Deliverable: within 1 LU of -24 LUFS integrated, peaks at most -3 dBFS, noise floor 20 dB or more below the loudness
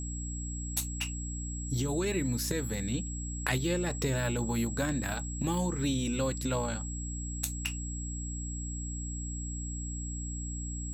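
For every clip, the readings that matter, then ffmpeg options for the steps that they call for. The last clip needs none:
hum 60 Hz; highest harmonic 300 Hz; hum level -35 dBFS; steady tone 7.7 kHz; tone level -41 dBFS; loudness -33.5 LUFS; peak level -15.0 dBFS; loudness target -24.0 LUFS
-> -af "bandreject=f=60:t=h:w=4,bandreject=f=120:t=h:w=4,bandreject=f=180:t=h:w=4,bandreject=f=240:t=h:w=4,bandreject=f=300:t=h:w=4"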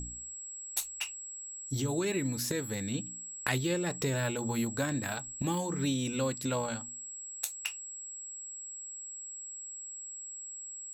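hum not found; steady tone 7.7 kHz; tone level -41 dBFS
-> -af "bandreject=f=7700:w=30"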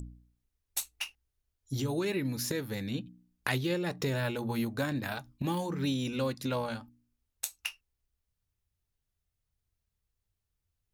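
steady tone not found; loudness -34.0 LUFS; peak level -14.5 dBFS; loudness target -24.0 LUFS
-> -af "volume=3.16"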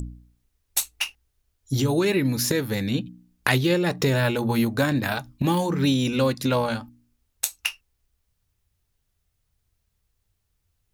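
loudness -24.0 LUFS; peak level -4.5 dBFS; noise floor -75 dBFS

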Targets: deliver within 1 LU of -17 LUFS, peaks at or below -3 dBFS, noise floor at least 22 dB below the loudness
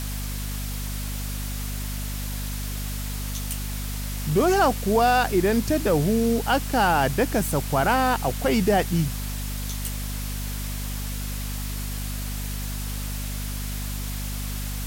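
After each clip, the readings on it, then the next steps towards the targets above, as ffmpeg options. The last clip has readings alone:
hum 50 Hz; highest harmonic 250 Hz; hum level -28 dBFS; noise floor -30 dBFS; noise floor target -48 dBFS; loudness -25.5 LUFS; peak level -9.5 dBFS; loudness target -17.0 LUFS
-> -af "bandreject=f=50:t=h:w=6,bandreject=f=100:t=h:w=6,bandreject=f=150:t=h:w=6,bandreject=f=200:t=h:w=6,bandreject=f=250:t=h:w=6"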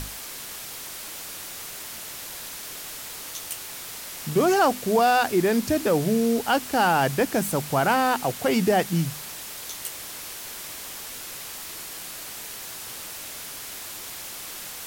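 hum not found; noise floor -38 dBFS; noise floor target -49 dBFS
-> -af "afftdn=nr=11:nf=-38"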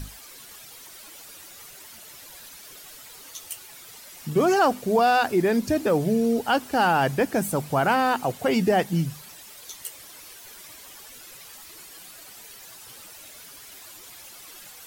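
noise floor -45 dBFS; loudness -23.0 LUFS; peak level -10.0 dBFS; loudness target -17.0 LUFS
-> -af "volume=2"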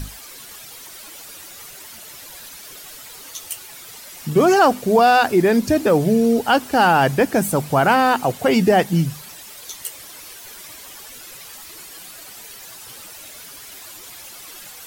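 loudness -17.0 LUFS; peak level -4.0 dBFS; noise floor -39 dBFS

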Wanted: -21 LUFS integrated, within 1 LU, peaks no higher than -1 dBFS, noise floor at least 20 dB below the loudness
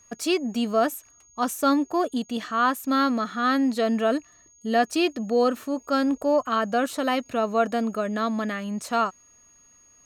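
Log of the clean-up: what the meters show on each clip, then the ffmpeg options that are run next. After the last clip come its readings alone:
steady tone 6.6 kHz; tone level -54 dBFS; loudness -24.5 LUFS; peak level -10.0 dBFS; loudness target -21.0 LUFS
-> -af "bandreject=f=6600:w=30"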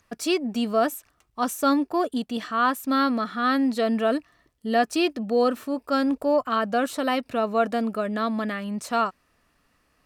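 steady tone not found; loudness -24.5 LUFS; peak level -10.0 dBFS; loudness target -21.0 LUFS
-> -af "volume=1.5"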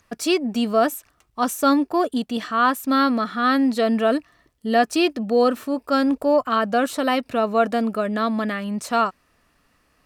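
loudness -21.0 LUFS; peak level -6.5 dBFS; noise floor -64 dBFS

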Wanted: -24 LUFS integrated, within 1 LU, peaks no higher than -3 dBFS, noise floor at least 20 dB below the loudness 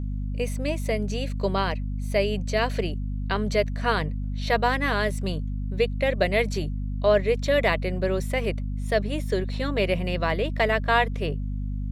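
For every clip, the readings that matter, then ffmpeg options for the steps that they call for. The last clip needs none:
hum 50 Hz; highest harmonic 250 Hz; hum level -26 dBFS; loudness -25.5 LUFS; peak level -7.5 dBFS; loudness target -24.0 LUFS
-> -af "bandreject=f=50:t=h:w=4,bandreject=f=100:t=h:w=4,bandreject=f=150:t=h:w=4,bandreject=f=200:t=h:w=4,bandreject=f=250:t=h:w=4"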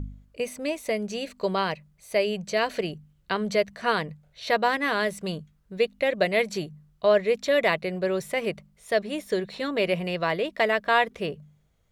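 hum not found; loudness -26.5 LUFS; peak level -8.0 dBFS; loudness target -24.0 LUFS
-> -af "volume=1.33"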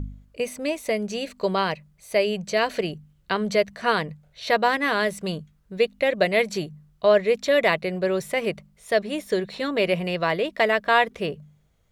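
loudness -24.0 LUFS; peak level -5.5 dBFS; noise floor -61 dBFS

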